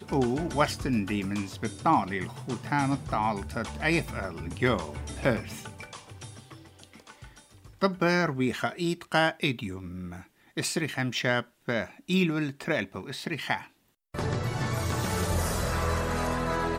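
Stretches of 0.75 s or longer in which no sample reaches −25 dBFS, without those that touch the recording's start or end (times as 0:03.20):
0:05.39–0:07.83
0:09.64–0:10.58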